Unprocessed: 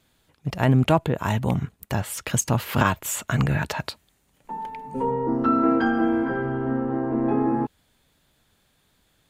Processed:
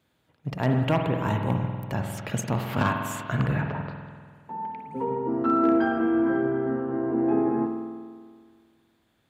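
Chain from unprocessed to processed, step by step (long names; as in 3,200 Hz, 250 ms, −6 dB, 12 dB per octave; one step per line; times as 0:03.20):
wave folding −11 dBFS
high-pass filter 82 Hz
parametric band 9,800 Hz −8.5 dB 2.4 octaves
0:03.61–0:04.79: treble cut that deepens with the level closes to 1,100 Hz, closed at −27 dBFS
spring reverb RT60 1.8 s, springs 48 ms, chirp 45 ms, DRR 3 dB
level −3.5 dB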